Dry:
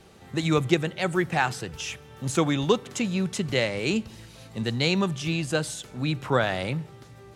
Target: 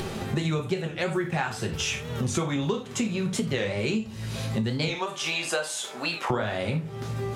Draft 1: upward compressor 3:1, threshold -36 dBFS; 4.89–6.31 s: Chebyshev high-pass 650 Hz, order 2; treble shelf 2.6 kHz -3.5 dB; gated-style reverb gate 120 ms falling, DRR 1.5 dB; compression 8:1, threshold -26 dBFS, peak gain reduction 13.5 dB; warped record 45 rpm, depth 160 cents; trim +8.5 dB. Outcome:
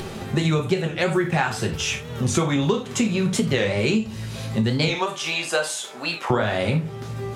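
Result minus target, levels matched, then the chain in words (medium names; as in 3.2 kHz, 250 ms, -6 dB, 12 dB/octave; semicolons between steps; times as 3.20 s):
compression: peak gain reduction -6 dB
upward compressor 3:1, threshold -36 dBFS; 4.89–6.31 s: Chebyshev high-pass 650 Hz, order 2; treble shelf 2.6 kHz -3.5 dB; gated-style reverb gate 120 ms falling, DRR 1.5 dB; compression 8:1, threshold -33 dBFS, peak gain reduction 20 dB; warped record 45 rpm, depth 160 cents; trim +8.5 dB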